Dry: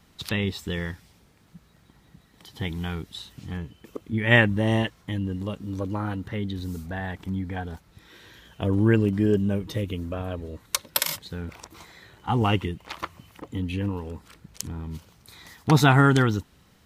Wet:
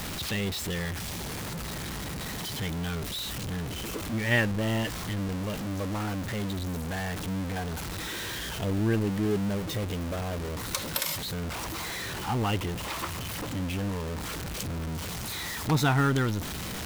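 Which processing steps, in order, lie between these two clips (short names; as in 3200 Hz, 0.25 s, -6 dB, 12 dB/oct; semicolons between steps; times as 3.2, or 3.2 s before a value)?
zero-crossing step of -21 dBFS; gain -8.5 dB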